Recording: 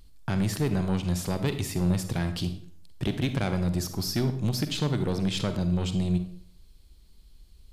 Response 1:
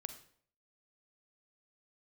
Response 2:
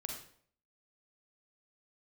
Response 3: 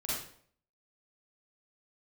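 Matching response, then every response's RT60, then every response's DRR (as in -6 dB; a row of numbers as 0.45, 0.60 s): 1; 0.55, 0.55, 0.55 s; 9.0, 1.0, -8.5 dB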